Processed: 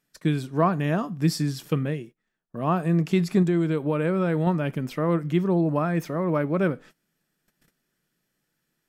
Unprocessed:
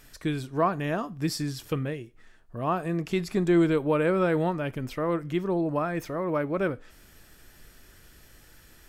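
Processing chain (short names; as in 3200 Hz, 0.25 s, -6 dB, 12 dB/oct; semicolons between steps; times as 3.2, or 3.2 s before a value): gate -46 dBFS, range -23 dB; resonant low shelf 110 Hz -13 dB, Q 3; 3.42–4.47 compressor 3:1, threshold -23 dBFS, peak gain reduction 7.5 dB; gain +1.5 dB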